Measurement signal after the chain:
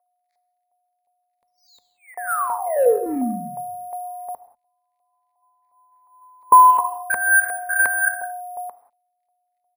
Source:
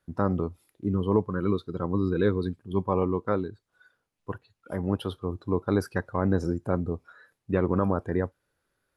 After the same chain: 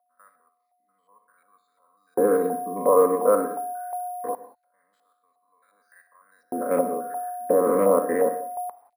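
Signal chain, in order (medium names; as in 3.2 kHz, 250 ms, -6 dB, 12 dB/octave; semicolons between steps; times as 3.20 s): spectrogram pixelated in time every 100 ms; whistle 720 Hz -36 dBFS; static phaser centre 570 Hz, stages 8; on a send: feedback delay 61 ms, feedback 28%, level -11 dB; on the sum: crackle 45 per s -59 dBFS; distance through air 110 m; LFO high-pass square 0.23 Hz 390–6200 Hz; in parallel at -10 dB: hard clipper -29 dBFS; on the sum: LFO low-pass saw up 2.8 Hz 780–2500 Hz; careless resampling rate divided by 4×, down filtered, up hold; rippled EQ curve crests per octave 0.96, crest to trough 7 dB; gated-style reverb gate 210 ms flat, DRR 12 dB; trim +4 dB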